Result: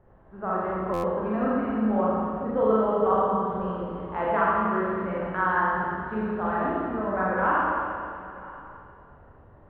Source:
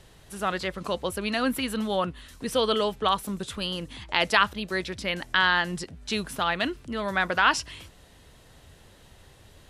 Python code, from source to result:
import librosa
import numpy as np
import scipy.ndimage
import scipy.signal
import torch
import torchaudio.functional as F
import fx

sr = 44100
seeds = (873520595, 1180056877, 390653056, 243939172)

y = scipy.signal.sosfilt(scipy.signal.butter(4, 1300.0, 'lowpass', fs=sr, output='sos'), x)
y = fx.low_shelf(y, sr, hz=170.0, db=-3.5)
y = y + 10.0 ** (-20.5 / 20.0) * np.pad(y, (int(984 * sr / 1000.0), 0))[:len(y)]
y = fx.rev_schroeder(y, sr, rt60_s=2.3, comb_ms=29, drr_db=-7.5)
y = fx.buffer_glitch(y, sr, at_s=(0.93,), block=512, repeats=8)
y = y * 10.0 ** (-4.0 / 20.0)